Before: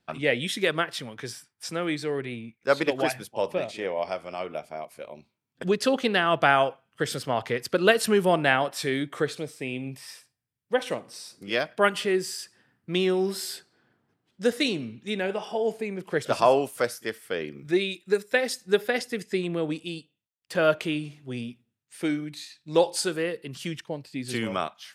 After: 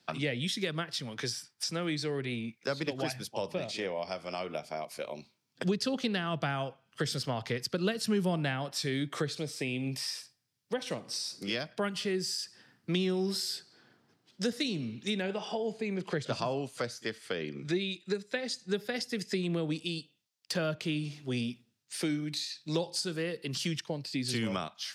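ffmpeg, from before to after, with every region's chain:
-filter_complex "[0:a]asettb=1/sr,asplit=3[s0][s1][s2];[s0]atrim=end=15.224[s3];[s1]atrim=start=15.22:end=18.74,asetpts=PTS-STARTPTS,afade=t=in:d=0.004:c=qsin,afade=t=out:st=3.516:d=0.004:c=qsin,lowpass=7200,bandreject=f=5400:w=7.4[s4];[s2]atrim=start=18.736[s5];[s3][s4]acrossfade=d=0.004:c1=hsin:c2=qsin[s6];[s6][s5]acrossfade=d=0.004:c1=qsin:c2=hsin,highpass=110,equalizer=f=5000:w=1.2:g=10.5,acrossover=split=190[s7][s8];[s8]acompressor=threshold=0.0141:ratio=5[s9];[s7][s9]amix=inputs=2:normalize=0,volume=1.5"

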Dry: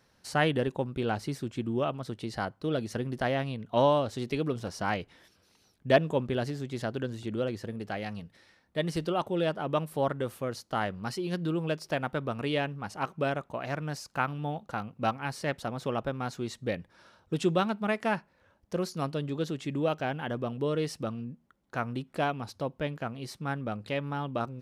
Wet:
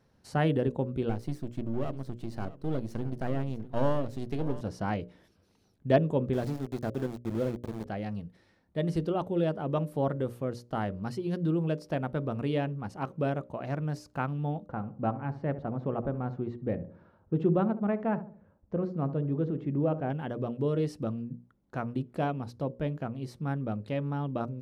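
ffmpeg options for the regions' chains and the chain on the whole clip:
-filter_complex "[0:a]asettb=1/sr,asplit=3[s0][s1][s2];[s0]atrim=end=1.094[s3];[s1]atrim=start=1.09:end=4.61,asetpts=PTS-STARTPTS,afade=t=in:d=0.004:c=qsin,afade=t=out:st=3.516:d=0.004:c=qsin,aeval=exprs='if(lt(val(0),0),0.251*val(0),val(0))':c=same,highshelf=f=11000:g=6,aecho=1:1:647:0.158,atrim=end_sample=155232[s4];[s2]atrim=start=4.606[s5];[s3][s4]acrossfade=d=0.004:c1=hsin:c2=qsin[s6];[s6][s5]acrossfade=d=0.004:c1=qsin:c2=hsin,asettb=1/sr,asplit=3[s7][s8][s9];[s7]atrim=end=6.334[s10];[s8]atrim=start=6.33:end=7.86,asetpts=PTS-STARTPTS,afade=t=in:d=0.004:c=qsin,afade=t=out:st=1.526:d=0.004:c=qsin,bandreject=f=2900:w=6,aeval=exprs='val(0)*gte(abs(val(0)),0.0188)':c=same[s11];[s9]atrim=start=7.856[s12];[s10][s11]acrossfade=d=0.004:c1=hsin:c2=qsin[s13];[s13][s12]acrossfade=d=0.004:c1=qsin:c2=hsin,asettb=1/sr,asplit=3[s14][s15][s16];[s14]atrim=end=14.664[s17];[s15]atrim=start=14.66:end=20.1,asetpts=PTS-STARTPTS,afade=t=in:d=0.004:c=qsin,afade=t=out:st=5.436:d=0.004:c=qsin,lowpass=1700,asplit=2[s18][s19];[s19]adelay=70,lowpass=f=800:p=1,volume=0.266,asplit=2[s20][s21];[s21]adelay=70,lowpass=f=800:p=1,volume=0.48,asplit=2[s22][s23];[s23]adelay=70,lowpass=f=800:p=1,volume=0.48,asplit=2[s24][s25];[s25]adelay=70,lowpass=f=800:p=1,volume=0.48,asplit=2[s26][s27];[s27]adelay=70,lowpass=f=800:p=1,volume=0.48[s28];[s18][s20][s22][s24][s26][s28]amix=inputs=6:normalize=0,atrim=end_sample=239904[s29];[s16]atrim=start=20.096[s30];[s17][s29]acrossfade=d=0.004:c1=hsin:c2=qsin[s31];[s31][s30]acrossfade=d=0.004:c1=qsin:c2=hsin,tiltshelf=f=770:g=7,bandreject=f=60:t=h:w=6,bandreject=f=120:t=h:w=6,bandreject=f=180:t=h:w=6,bandreject=f=240:t=h:w=6,bandreject=f=300:t=h:w=6,bandreject=f=360:t=h:w=6,bandreject=f=420:t=h:w=6,bandreject=f=480:t=h:w=6,bandreject=f=540:t=h:w=6,bandreject=f=600:t=h:w=6,volume=0.75"

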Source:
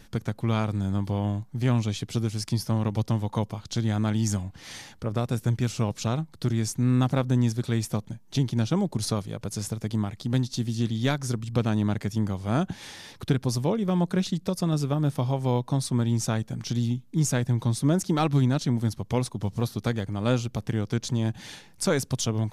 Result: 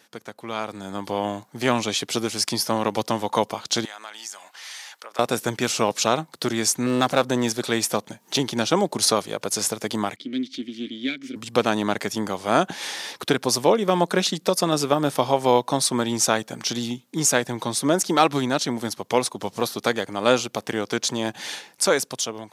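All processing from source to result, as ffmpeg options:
-filter_complex "[0:a]asettb=1/sr,asplit=3[s0][s1][s2];[s0]atrim=end=3.854[s3];[s1]atrim=start=3.85:end=5.19,asetpts=PTS-STARTPTS,afade=t=in:d=0.004:c=qsin,afade=t=out:st=1.336:d=0.004:c=qsin,highpass=960,acompressor=threshold=0.00282:ratio=2.5:attack=3.2:release=140:knee=1:detection=peak[s4];[s2]atrim=start=5.186[s5];[s3][s4]acrossfade=d=0.004:c1=hsin:c2=qsin[s6];[s6][s5]acrossfade=d=0.004:c1=qsin:c2=hsin,asettb=1/sr,asplit=3[s7][s8][s9];[s7]atrim=end=6.864[s10];[s8]atrim=start=6.86:end=8.4,asetpts=PTS-STARTPTS,afade=t=in:d=0.004:c=qsin,afade=t=out:st=1.536:d=0.004:c=qsin,acompressor=mode=upward:threshold=0.0126:ratio=2.5:attack=3.2:release=140:knee=2.83:detection=peak,aeval=exprs='clip(val(0),-1,0.0708)':c=same[s11];[s9]atrim=start=8.396[s12];[s10][s11]acrossfade=d=0.004:c1=hsin:c2=qsin[s13];[s13][s12]acrossfade=d=0.004:c1=qsin:c2=hsin,asettb=1/sr,asplit=3[s14][s15][s16];[s14]atrim=end=10.164[s17];[s15]atrim=start=10.16:end=11.36,asetpts=PTS-STARTPTS,afade=t=in:d=0.004:c=qsin,afade=t=out:st=1.196:d=0.004:c=qsin,aeval=exprs='clip(val(0),-1,0.0158)':c=same,acontrast=33,asplit=3[s18][s19][s20];[s18]bandpass=f=270:t=q:w=8,volume=1[s21];[s19]bandpass=f=2290:t=q:w=8,volume=0.501[s22];[s20]bandpass=f=3010:t=q:w=8,volume=0.355[s23];[s21][s22][s23]amix=inputs=3:normalize=0[s24];[s16]atrim=start=11.356[s25];[s17][s24]acrossfade=d=0.004:c1=hsin:c2=qsin[s26];[s26][s25]acrossfade=d=0.004:c1=qsin:c2=hsin,highpass=430,dynaudnorm=f=280:g=7:m=4.47"

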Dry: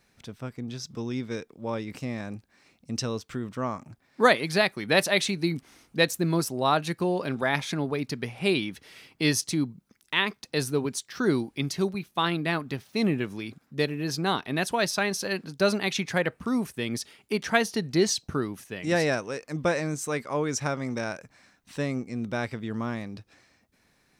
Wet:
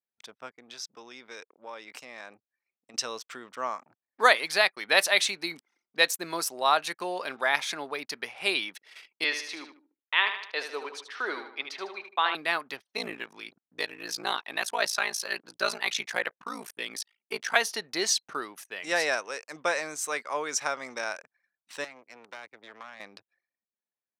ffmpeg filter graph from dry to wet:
-filter_complex "[0:a]asettb=1/sr,asplit=3[s0][s1][s2];[s0]atrim=end=0.574[s3];[s1]atrim=start=0.57:end=2.94,asetpts=PTS-STARTPTS,afade=t=in:d=0.004:c=qsin,afade=t=out:st=2.366:d=0.004:c=qsin,lowshelf=f=290:g=-5,acompressor=threshold=0.0158:ratio=2.5:attack=3.2:release=140:knee=1:detection=peak[s4];[s2]atrim=start=2.936[s5];[s3][s4]acrossfade=d=0.004:c1=hsin:c2=qsin[s6];[s6][s5]acrossfade=d=0.004:c1=qsin:c2=hsin,asettb=1/sr,asplit=3[s7][s8][s9];[s7]atrim=end=9.244[s10];[s8]atrim=start=9.24:end=12.35,asetpts=PTS-STARTPTS,afade=t=in:d=0.004:c=qsin,afade=t=out:st=3.106:d=0.004:c=qsin,acrossover=split=320 4000:gain=0.0891 1 0.0708[s11][s12][s13];[s11][s12][s13]amix=inputs=3:normalize=0,aecho=1:1:76|152|228|304|380:0.376|0.18|0.0866|0.0416|0.02,atrim=end_sample=137151[s14];[s9]atrim=start=12.346[s15];[s10][s14]acrossfade=d=0.004:c1=hsin:c2=qsin[s16];[s16][s15]acrossfade=d=0.004:c1=qsin:c2=hsin,asettb=1/sr,asplit=3[s17][s18][s19];[s17]atrim=end=12.964[s20];[s18]atrim=start=12.96:end=17.56,asetpts=PTS-STARTPTS,afade=t=in:d=0.004:c=qsin,afade=t=out:st=4.596:d=0.004:c=qsin,aphaser=in_gain=1:out_gain=1:delay=1.3:decay=0.28:speed=1.6:type=triangular,aeval=exprs='val(0)*sin(2*PI*28*n/s)':c=same[s21];[s19]atrim=start=17.556[s22];[s20][s21]acrossfade=d=0.004:c1=hsin:c2=qsin[s23];[s23][s22]acrossfade=d=0.004:c1=qsin:c2=hsin,asettb=1/sr,asplit=3[s24][s25][s26];[s24]atrim=end=21.844[s27];[s25]atrim=start=21.84:end=23,asetpts=PTS-STARTPTS,afade=t=in:d=0.004:c=qsin,afade=t=out:st=1.156:d=0.004:c=qsin,lowshelf=f=410:g=-3,aeval=exprs='max(val(0),0)':c=same,acrossover=split=400|850[s28][s29][s30];[s28]acompressor=threshold=0.0141:ratio=4[s31];[s29]acompressor=threshold=0.00282:ratio=4[s32];[s30]acompressor=threshold=0.00501:ratio=4[s33];[s31][s32][s33]amix=inputs=3:normalize=0[s34];[s26]atrim=start=22.996[s35];[s27][s34]acrossfade=d=0.004:c1=hsin:c2=qsin[s36];[s36][s35]acrossfade=d=0.004:c1=qsin:c2=hsin,anlmdn=0.01,highpass=740,volume=1.33"

